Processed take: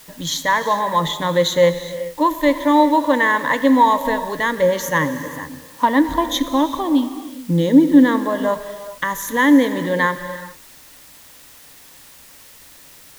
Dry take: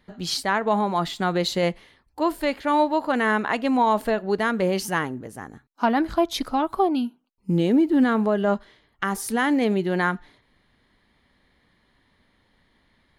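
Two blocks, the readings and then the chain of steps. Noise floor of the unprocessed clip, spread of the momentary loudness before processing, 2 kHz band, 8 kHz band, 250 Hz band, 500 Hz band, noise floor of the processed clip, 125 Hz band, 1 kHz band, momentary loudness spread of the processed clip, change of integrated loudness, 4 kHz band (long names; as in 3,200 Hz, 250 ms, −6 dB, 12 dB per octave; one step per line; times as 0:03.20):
−66 dBFS, 9 LU, +6.5 dB, +6.5 dB, +6.5 dB, +5.0 dB, −45 dBFS, +3.5 dB, +6.0 dB, 13 LU, +6.0 dB, +5.5 dB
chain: EQ curve with evenly spaced ripples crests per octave 1.1, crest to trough 17 dB
in parallel at −8 dB: bit-depth reduction 6 bits, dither triangular
on the sum: reverb whose tail is shaped and stops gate 450 ms flat, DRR 10 dB
level −1 dB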